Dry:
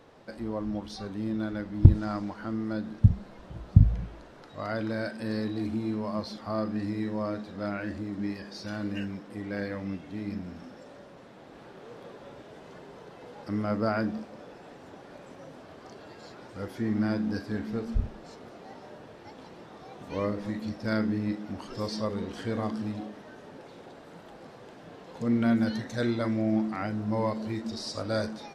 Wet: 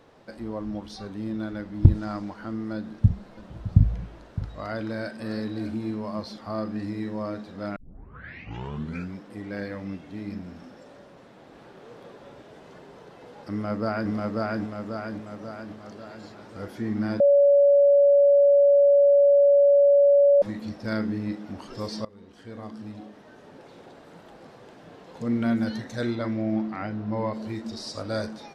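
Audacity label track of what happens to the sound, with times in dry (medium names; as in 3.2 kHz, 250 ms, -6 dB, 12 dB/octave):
2.760000	5.910000	delay 612 ms -14.5 dB
7.760000	7.760000	tape start 1.41 s
13.510000	14.120000	echo throw 540 ms, feedback 55%, level -0.5 dB
17.200000	20.420000	bleep 567 Hz -13.5 dBFS
22.050000	23.770000	fade in, from -21 dB
26.150000	27.320000	low-pass 5.5 kHz -> 3.6 kHz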